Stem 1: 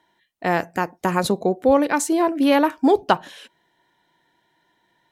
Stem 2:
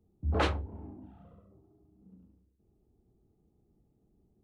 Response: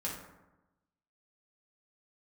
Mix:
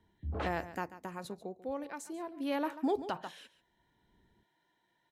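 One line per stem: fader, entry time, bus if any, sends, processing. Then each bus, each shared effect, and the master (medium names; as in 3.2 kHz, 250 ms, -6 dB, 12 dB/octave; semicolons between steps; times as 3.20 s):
0.80 s -12.5 dB -> 1.10 s -22.5 dB -> 2.30 s -22.5 dB -> 2.76 s -11 dB, 0.00 s, no send, echo send -16.5 dB, none
-1.5 dB, 0.00 s, no send, no echo send, treble shelf 3.9 kHz -6 dB; auto duck -18 dB, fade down 0.95 s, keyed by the first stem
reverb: none
echo: delay 140 ms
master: peak limiter -23.5 dBFS, peak gain reduction 9.5 dB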